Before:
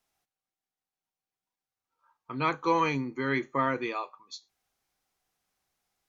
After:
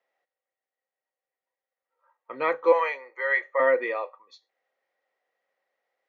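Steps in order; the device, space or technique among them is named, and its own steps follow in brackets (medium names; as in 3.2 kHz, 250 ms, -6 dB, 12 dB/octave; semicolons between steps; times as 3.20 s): 2.72–3.60 s: high-pass 580 Hz 24 dB/octave; tin-can telephone (band-pass 450–2600 Hz; small resonant body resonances 530/1900 Hz, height 17 dB, ringing for 35 ms)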